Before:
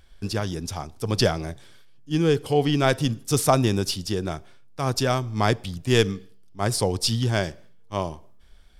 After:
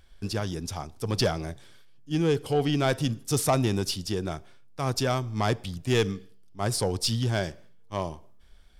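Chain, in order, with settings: saturation -12 dBFS, distortion -17 dB; trim -2.5 dB

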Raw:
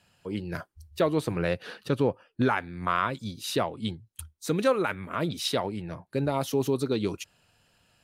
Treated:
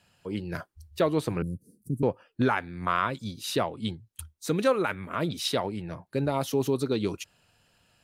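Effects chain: 1.42–2.03 s: inverse Chebyshev band-stop 770–3500 Hz, stop band 60 dB

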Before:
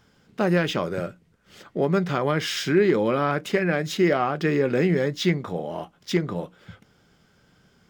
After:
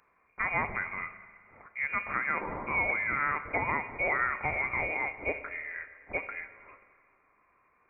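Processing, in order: high-pass 1.4 kHz 6 dB/octave; frequency inversion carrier 2.6 kHz; Schroeder reverb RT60 1.8 s, combs from 29 ms, DRR 11 dB

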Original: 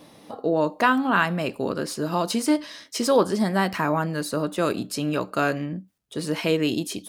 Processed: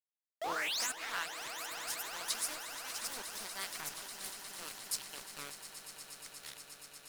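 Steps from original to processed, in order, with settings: tape stop on the ending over 1.45 s; pre-emphasis filter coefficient 0.97; in parallel at -1.5 dB: compression, threshold -47 dBFS, peak gain reduction 19 dB; on the sum: rotary cabinet horn 5.5 Hz, later 0.75 Hz, at 0.35 s; painted sound rise, 0.41–0.92 s, 600–9100 Hz -33 dBFS; small samples zeroed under -35.5 dBFS; on a send: echo with a slow build-up 119 ms, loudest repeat 8, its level -15 dB; on the sum: ever faster or slower copies 177 ms, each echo +5 st, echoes 3, each echo -6 dB; loudspeaker Doppler distortion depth 0.22 ms; trim -3.5 dB

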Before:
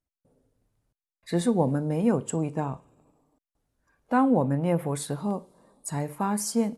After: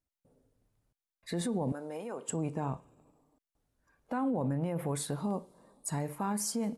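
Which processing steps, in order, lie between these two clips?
peak limiter -22.5 dBFS, peak gain reduction 11.5 dB; 1.72–2.29 s: high-pass 490 Hz 12 dB/octave; trim -2 dB

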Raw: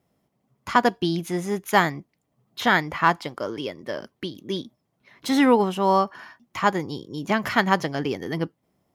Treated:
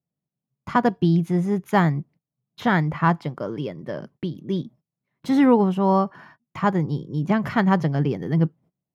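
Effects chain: peaking EQ 150 Hz +12.5 dB 0.82 oct; gate -47 dBFS, range -22 dB; treble shelf 2.2 kHz -12 dB

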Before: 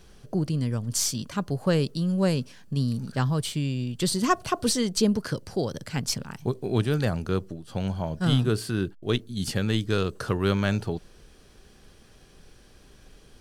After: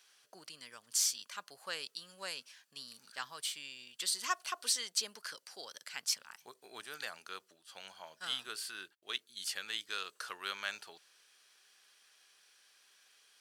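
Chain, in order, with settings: 6.23–6.95 s: dynamic bell 3 kHz, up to -7 dB, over -50 dBFS, Q 1.1; high-pass 1.5 kHz 12 dB/octave; trim -4.5 dB

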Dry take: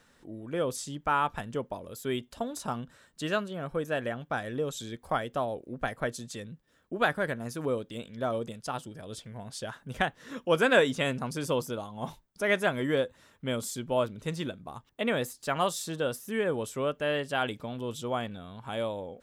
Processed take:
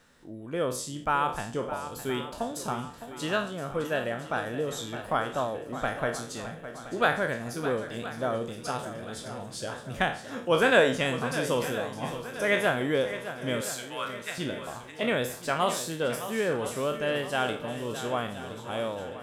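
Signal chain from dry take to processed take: spectral sustain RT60 0.42 s; 13.61–14.38 s: resonant high-pass 1.6 kHz, resonance Q 1.9; shuffle delay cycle 1020 ms, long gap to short 1.5:1, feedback 47%, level -12 dB

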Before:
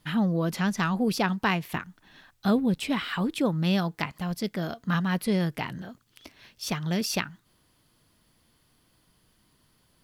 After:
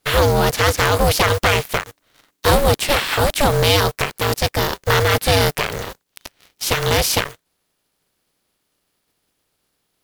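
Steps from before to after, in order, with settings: spectral contrast reduction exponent 0.57; ring modulator 290 Hz; waveshaping leveller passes 3; trim +3.5 dB

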